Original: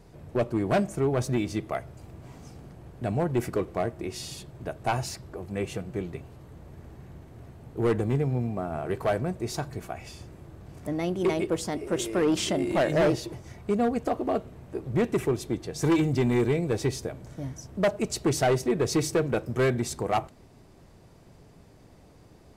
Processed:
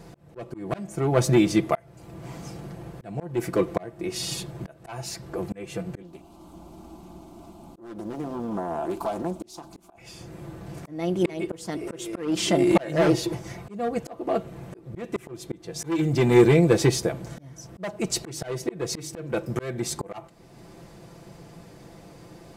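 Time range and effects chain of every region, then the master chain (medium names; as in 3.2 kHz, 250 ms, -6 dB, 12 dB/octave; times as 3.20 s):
6.02–9.98 s: static phaser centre 480 Hz, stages 6 + compression 5:1, threshold -33 dBFS + loudspeaker Doppler distortion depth 0.46 ms
whole clip: bass shelf 66 Hz -10.5 dB; comb 5.9 ms, depth 51%; slow attack 547 ms; trim +8 dB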